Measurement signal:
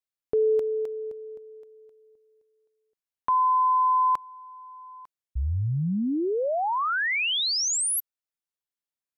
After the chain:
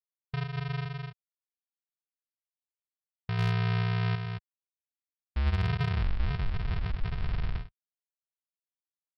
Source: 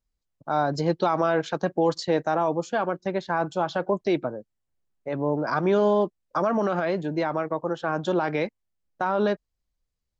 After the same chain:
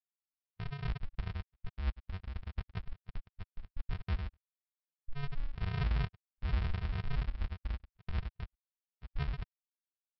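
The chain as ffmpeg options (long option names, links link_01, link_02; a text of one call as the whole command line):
ffmpeg -i in.wav -filter_complex "[0:a]equalizer=frequency=67:width_type=o:width=1.1:gain=11.5,alimiter=limit=-19.5dB:level=0:latency=1:release=25,asplit=2[link_01][link_02];[link_02]aecho=0:1:100|220|364|536.8|744.2:0.631|0.398|0.251|0.158|0.1[link_03];[link_01][link_03]amix=inputs=2:normalize=0,afftfilt=real='re*gte(hypot(re,im),0.316)':imag='im*gte(hypot(re,im),0.316)':win_size=1024:overlap=0.75,aresample=11025,acrusher=samples=39:mix=1:aa=0.000001,aresample=44100,lowpass=2700,agate=range=-35dB:threshold=-36dB:ratio=16:release=222:detection=peak,asoftclip=type=hard:threshold=-16.5dB,equalizer=frequency=380:width_type=o:width=2.9:gain=-15" out.wav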